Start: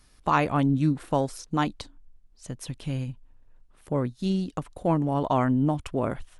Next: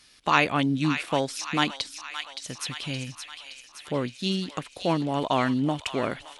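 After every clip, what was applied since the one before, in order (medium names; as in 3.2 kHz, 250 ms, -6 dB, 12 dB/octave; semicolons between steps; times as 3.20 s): frequency weighting D; on a send: feedback echo behind a high-pass 569 ms, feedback 59%, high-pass 1.4 kHz, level -7 dB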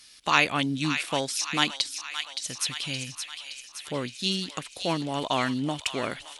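treble shelf 2.3 kHz +11 dB; trim -4 dB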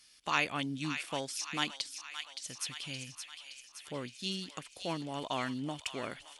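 band-stop 3.9 kHz, Q 13; trim -9 dB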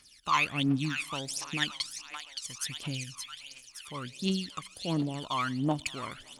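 on a send at -23 dB: reverberation RT60 1.3 s, pre-delay 65 ms; on the sum: phaser 1.4 Hz, delay 1 ms, feedback 76%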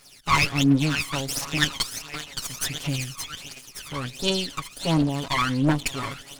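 comb filter that takes the minimum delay 7.2 ms; trim +9 dB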